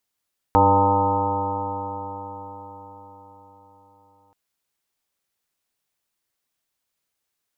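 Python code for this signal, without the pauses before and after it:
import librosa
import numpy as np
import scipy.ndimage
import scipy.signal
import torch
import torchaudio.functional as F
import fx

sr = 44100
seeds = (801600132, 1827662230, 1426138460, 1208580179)

y = fx.additive_stiff(sr, length_s=3.78, hz=96.6, level_db=-21.0, upper_db=(-8, -1.0, -18.5, 1, -5.5, -15.0, 2.5, 6, -5.0, -19, -6.0), decay_s=4.97, stiffness=0.0012)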